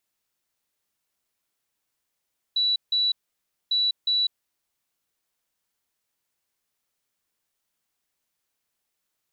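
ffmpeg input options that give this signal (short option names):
-f lavfi -i "aevalsrc='0.106*sin(2*PI*3940*t)*clip(min(mod(mod(t,1.15),0.36),0.2-mod(mod(t,1.15),0.36))/0.005,0,1)*lt(mod(t,1.15),0.72)':d=2.3:s=44100"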